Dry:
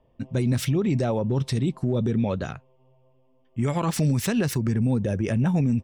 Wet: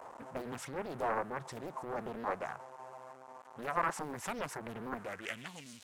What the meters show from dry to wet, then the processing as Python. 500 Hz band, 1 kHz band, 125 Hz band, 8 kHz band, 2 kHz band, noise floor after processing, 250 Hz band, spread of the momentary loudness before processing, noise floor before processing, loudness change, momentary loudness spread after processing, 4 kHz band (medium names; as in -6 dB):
-11.5 dB, -1.5 dB, -28.0 dB, -13.0 dB, -4.0 dB, -54 dBFS, -21.5 dB, 6 LU, -62 dBFS, -15.0 dB, 15 LU, -13.0 dB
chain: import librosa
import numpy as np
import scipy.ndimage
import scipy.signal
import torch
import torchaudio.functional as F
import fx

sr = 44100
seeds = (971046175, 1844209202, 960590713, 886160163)

y = x + 0.5 * 10.0 ** (-35.0 / 20.0) * np.sign(x)
y = fx.filter_sweep_bandpass(y, sr, from_hz=920.0, to_hz=3800.0, start_s=4.88, end_s=5.66, q=2.7)
y = fx.high_shelf_res(y, sr, hz=5500.0, db=12.0, q=1.5)
y = fx.doppler_dist(y, sr, depth_ms=0.98)
y = F.gain(torch.from_numpy(y), 1.0).numpy()